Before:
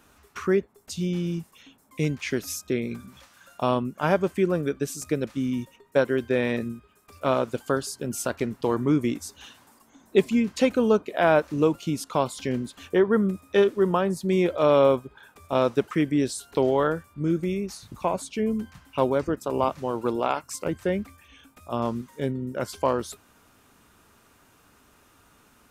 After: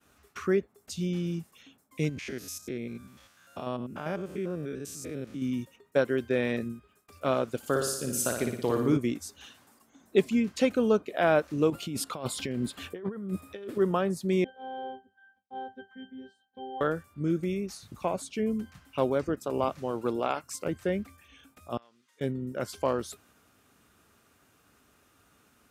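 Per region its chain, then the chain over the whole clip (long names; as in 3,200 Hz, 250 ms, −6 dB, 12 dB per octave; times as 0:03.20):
0:02.09–0:05.42: spectrum averaged block by block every 100 ms + downward compressor 1.5 to 1, threshold −33 dBFS
0:07.57–0:08.97: high-shelf EQ 7,000 Hz +8.5 dB + flutter between parallel walls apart 9.9 metres, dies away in 0.73 s
0:11.70–0:13.78: parametric band 6,100 Hz −7 dB 0.3 octaves + compressor whose output falls as the input rises −31 dBFS
0:14.44–0:16.81: phases set to zero 261 Hz + resonances in every octave G, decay 0.15 s
0:21.77–0:22.21: downward compressor 4 to 1, threshold −39 dBFS + resonant band-pass 3,600 Hz, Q 0.76
whole clip: high-pass filter 52 Hz; downward expander −56 dBFS; parametric band 950 Hz −6 dB 0.24 octaves; level −3.5 dB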